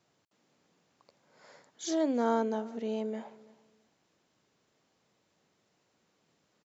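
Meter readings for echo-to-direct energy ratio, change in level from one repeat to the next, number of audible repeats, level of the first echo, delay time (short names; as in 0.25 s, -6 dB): -22.0 dB, -12.5 dB, 2, -22.0 dB, 0.335 s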